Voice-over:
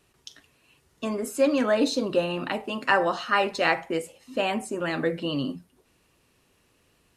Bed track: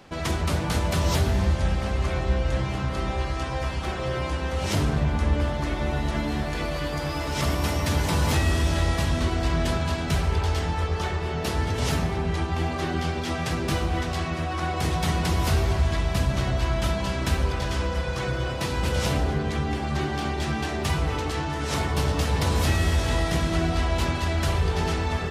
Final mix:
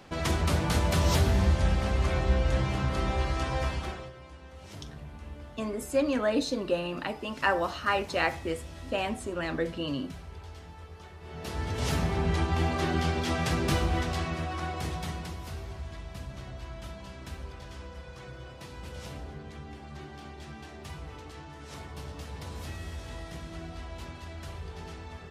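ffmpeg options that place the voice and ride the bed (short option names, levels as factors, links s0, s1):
-filter_complex "[0:a]adelay=4550,volume=0.596[s0];[1:a]volume=7.94,afade=t=out:st=3.64:d=0.48:silence=0.112202,afade=t=in:st=11.18:d=1.09:silence=0.105925,afade=t=out:st=13.7:d=1.7:silence=0.158489[s1];[s0][s1]amix=inputs=2:normalize=0"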